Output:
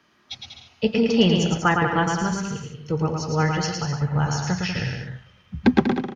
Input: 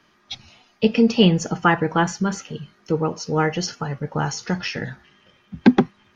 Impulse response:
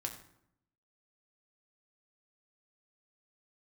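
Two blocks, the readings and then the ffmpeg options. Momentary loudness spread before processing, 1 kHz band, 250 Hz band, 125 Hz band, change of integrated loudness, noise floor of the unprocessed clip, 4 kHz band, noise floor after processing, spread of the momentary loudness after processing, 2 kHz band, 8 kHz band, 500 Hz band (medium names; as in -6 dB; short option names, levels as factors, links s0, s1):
18 LU, -1.0 dB, -2.0 dB, +1.5 dB, -1.5 dB, -60 dBFS, -0.5 dB, -59 dBFS, 18 LU, -0.5 dB, no reading, -2.0 dB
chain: -filter_complex "[0:a]highpass=55,asubboost=boost=9.5:cutoff=90,asplit=2[s0][s1];[s1]aecho=0:1:110|192.5|254.4|300.8|335.6:0.631|0.398|0.251|0.158|0.1[s2];[s0][s2]amix=inputs=2:normalize=0,volume=0.75"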